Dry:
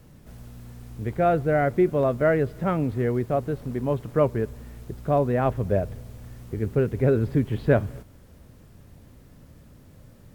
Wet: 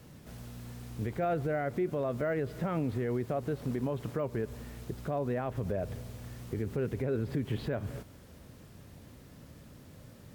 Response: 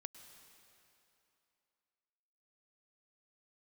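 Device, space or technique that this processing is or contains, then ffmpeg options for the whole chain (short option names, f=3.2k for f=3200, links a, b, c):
broadcast voice chain: -af "highpass=f=92:p=1,deesser=0.95,acompressor=threshold=-22dB:ratio=6,equalizer=f=4k:t=o:w=2:g=3,alimiter=limit=-23dB:level=0:latency=1:release=96"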